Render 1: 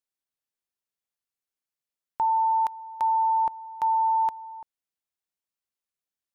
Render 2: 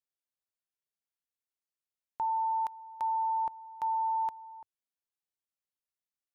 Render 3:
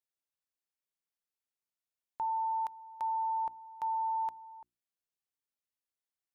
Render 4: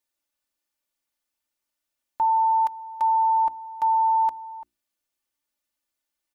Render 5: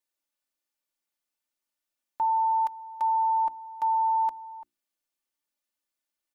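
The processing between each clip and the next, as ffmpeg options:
-af "equalizer=f=100:w=3.3:g=2,volume=-7.5dB"
-af "bandreject=f=60:t=h:w=6,bandreject=f=120:t=h:w=6,bandreject=f=180:t=h:w=6,bandreject=f=240:t=h:w=6,bandreject=f=300:t=h:w=6,bandreject=f=360:t=h:w=6,volume=-2.5dB"
-af "aecho=1:1:3.4:0.88,volume=7dB"
-af "equalizer=f=61:w=1.7:g=-14.5,volume=-4dB"

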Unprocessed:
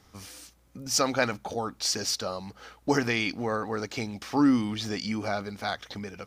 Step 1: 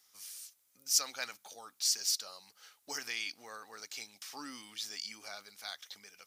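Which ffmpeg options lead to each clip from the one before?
-af "aderivative"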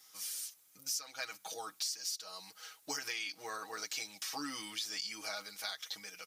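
-af "aecho=1:1:6.3:0.88,acompressor=threshold=-40dB:ratio=10,volume=4.5dB"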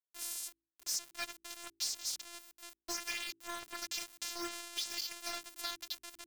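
-af "afftfilt=real='hypot(re,im)*cos(PI*b)':imag='0':win_size=512:overlap=0.75,aeval=exprs='val(0)*gte(abs(val(0)),0.00794)':c=same,bandreject=f=55.38:t=h:w=4,bandreject=f=110.76:t=h:w=4,bandreject=f=166.14:t=h:w=4,bandreject=f=221.52:t=h:w=4,bandreject=f=276.9:t=h:w=4,bandreject=f=332.28:t=h:w=4,bandreject=f=387.66:t=h:w=4,volume=4.5dB"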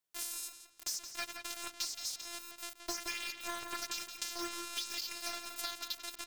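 -filter_complex "[0:a]acompressor=threshold=-42dB:ratio=6,asplit=2[a][b];[b]adelay=172,lowpass=f=4.3k:p=1,volume=-6.5dB,asplit=2[c][d];[d]adelay=172,lowpass=f=4.3k:p=1,volume=0.33,asplit=2[e][f];[f]adelay=172,lowpass=f=4.3k:p=1,volume=0.33,asplit=2[g][h];[h]adelay=172,lowpass=f=4.3k:p=1,volume=0.33[i];[c][e][g][i]amix=inputs=4:normalize=0[j];[a][j]amix=inputs=2:normalize=0,volume=7.5dB"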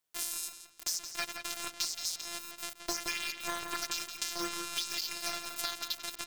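-af "tremolo=f=160:d=0.462,volume=6dB"

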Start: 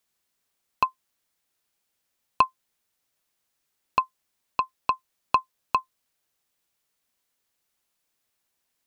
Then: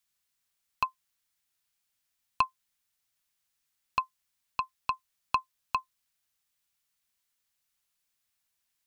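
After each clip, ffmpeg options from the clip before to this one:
-af "equalizer=f=420:t=o:w=2.1:g=-11.5,volume=-2dB"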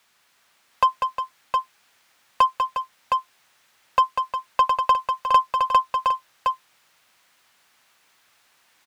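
-filter_complex "[0:a]asplit=2[a][b];[b]highpass=f=720:p=1,volume=32dB,asoftclip=type=tanh:threshold=-9.5dB[c];[a][c]amix=inputs=2:normalize=0,lowpass=f=1k:p=1,volume=-6dB,asplit=2[d][e];[e]aecho=0:1:195|357|714:0.473|0.316|0.596[f];[d][f]amix=inputs=2:normalize=0,volume=5dB"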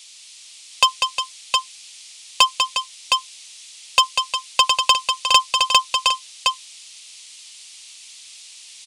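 -af "aresample=22050,aresample=44100,aexciter=amount=5.9:drive=9.8:freq=2.4k,volume=-1dB"

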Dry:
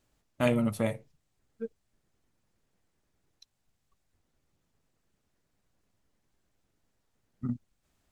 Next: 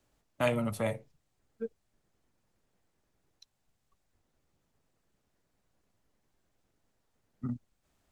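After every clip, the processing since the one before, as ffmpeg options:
-filter_complex "[0:a]equalizer=f=670:w=0.65:g=3,acrossover=split=120|570|4400[a][b][c][d];[b]alimiter=level_in=5dB:limit=-24dB:level=0:latency=1,volume=-5dB[e];[a][e][c][d]amix=inputs=4:normalize=0,volume=-1dB"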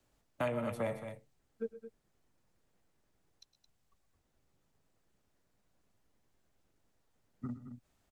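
-filter_complex "[0:a]aecho=1:1:109|124|218:0.133|0.126|0.237,acrossover=split=310|2200[a][b][c];[a]acompressor=threshold=-40dB:ratio=4[d];[b]acompressor=threshold=-31dB:ratio=4[e];[c]acompressor=threshold=-54dB:ratio=4[f];[d][e][f]amix=inputs=3:normalize=0,volume=-1dB"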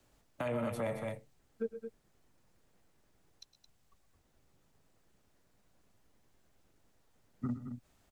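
-af "alimiter=level_in=8.5dB:limit=-24dB:level=0:latency=1:release=90,volume=-8.5dB,volume=5.5dB"

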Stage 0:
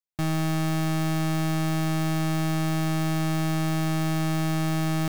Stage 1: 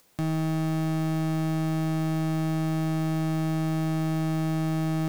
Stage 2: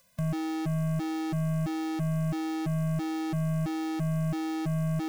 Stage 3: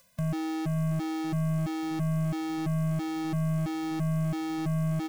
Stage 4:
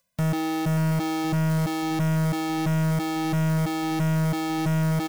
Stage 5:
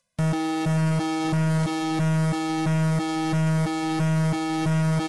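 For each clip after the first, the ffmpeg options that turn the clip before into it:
-af "equalizer=f=300:w=0.35:g=8.5,acompressor=mode=upward:threshold=-25dB:ratio=2.5,volume=-8dB"
-af "afftfilt=real='re*gt(sin(2*PI*1.5*pts/sr)*(1-2*mod(floor(b*sr/1024/240),2)),0)':imag='im*gt(sin(2*PI*1.5*pts/sr)*(1-2*mod(floor(b*sr/1024/240),2)),0)':win_size=1024:overlap=0.75"
-af "areverse,acompressor=mode=upward:threshold=-32dB:ratio=2.5,areverse,aecho=1:1:584|1168|1752|2336:0.158|0.0682|0.0293|0.0126"
-af "aeval=exprs='0.0944*(cos(1*acos(clip(val(0)/0.0944,-1,1)))-cos(1*PI/2))+0.0106*(cos(4*acos(clip(val(0)/0.0944,-1,1)))-cos(4*PI/2))+0.0376*(cos(5*acos(clip(val(0)/0.0944,-1,1)))-cos(5*PI/2))+0.00841*(cos(6*acos(clip(val(0)/0.0944,-1,1)))-cos(6*PI/2))+0.0376*(cos(7*acos(clip(val(0)/0.0944,-1,1)))-cos(7*PI/2))':c=same,acrusher=bits=5:mode=log:mix=0:aa=0.000001,volume=2dB"
-af "volume=1dB" -ar 24000 -c:a aac -b:a 32k

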